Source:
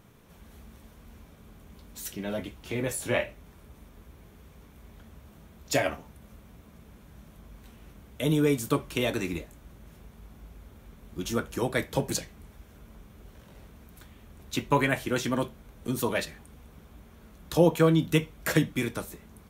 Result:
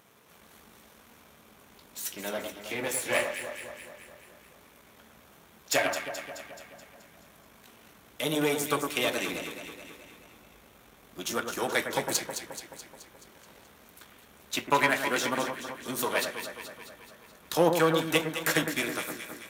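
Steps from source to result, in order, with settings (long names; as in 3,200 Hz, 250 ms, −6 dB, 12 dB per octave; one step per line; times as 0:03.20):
gain on one half-wave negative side −7 dB
high-pass filter 720 Hz 6 dB per octave
delay that swaps between a low-pass and a high-pass 107 ms, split 1,700 Hz, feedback 76%, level −6 dB
level +5.5 dB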